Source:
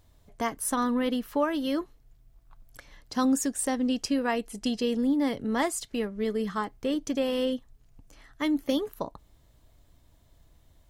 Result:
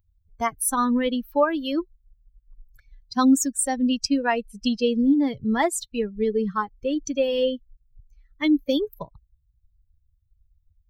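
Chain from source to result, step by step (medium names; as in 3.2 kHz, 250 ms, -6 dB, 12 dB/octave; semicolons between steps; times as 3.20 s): expander on every frequency bin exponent 2; trim +9 dB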